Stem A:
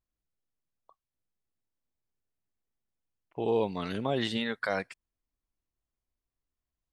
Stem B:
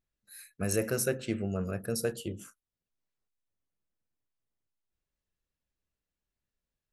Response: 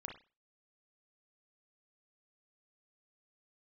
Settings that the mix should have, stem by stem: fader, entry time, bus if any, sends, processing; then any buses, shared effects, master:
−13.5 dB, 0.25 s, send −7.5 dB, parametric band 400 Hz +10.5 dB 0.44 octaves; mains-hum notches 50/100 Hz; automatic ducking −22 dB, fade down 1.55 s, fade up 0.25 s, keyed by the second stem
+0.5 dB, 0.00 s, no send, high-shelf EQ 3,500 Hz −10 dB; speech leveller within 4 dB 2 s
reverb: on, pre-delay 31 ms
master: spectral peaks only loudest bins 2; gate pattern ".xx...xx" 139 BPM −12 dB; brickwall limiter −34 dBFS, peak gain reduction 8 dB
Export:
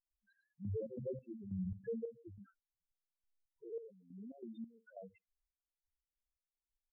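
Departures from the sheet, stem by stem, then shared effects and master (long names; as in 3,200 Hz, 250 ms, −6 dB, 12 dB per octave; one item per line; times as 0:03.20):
stem A: missing parametric band 400 Hz +10.5 dB 0.44 octaves
stem B: missing speech leveller within 4 dB 2 s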